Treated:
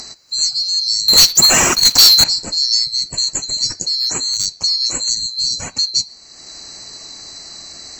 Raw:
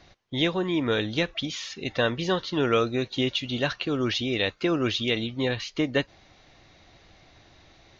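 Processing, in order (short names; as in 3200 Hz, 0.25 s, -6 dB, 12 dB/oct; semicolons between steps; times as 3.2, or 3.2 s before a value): band-swap scrambler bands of 4000 Hz; 1.08–2.24 sample leveller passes 5; in parallel at +1 dB: upward compressor, threshold -20 dBFS; 3.87–4.46 on the sum: hard clip -10.5 dBFS, distortion -35 dB; on a send at -23 dB: synth low-pass 4500 Hz, resonance Q 2.6 + reverb RT60 0.80 s, pre-delay 7 ms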